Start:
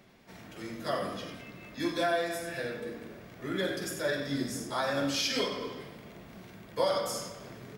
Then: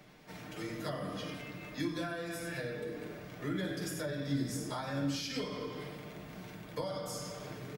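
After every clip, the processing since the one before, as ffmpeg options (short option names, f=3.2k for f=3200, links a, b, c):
-filter_complex "[0:a]aecho=1:1:6.6:0.49,acrossover=split=240[a][b];[b]acompressor=threshold=-39dB:ratio=6[c];[a][c]amix=inputs=2:normalize=0,volume=1dB"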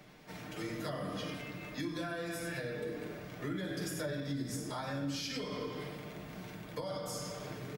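-af "alimiter=level_in=5.5dB:limit=-24dB:level=0:latency=1:release=144,volume=-5.5dB,volume=1dB"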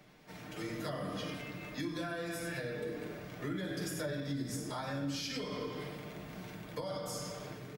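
-af "dynaudnorm=f=190:g=5:m=3.5dB,volume=-3.5dB"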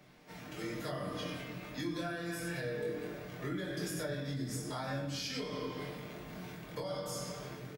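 -filter_complex "[0:a]asplit=2[a][b];[b]adelay=23,volume=-3dB[c];[a][c]amix=inputs=2:normalize=0,volume=-1.5dB"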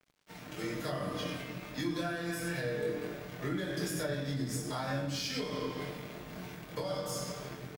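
-af "aeval=exprs='sgn(val(0))*max(abs(val(0))-0.00178,0)':c=same,volume=4dB"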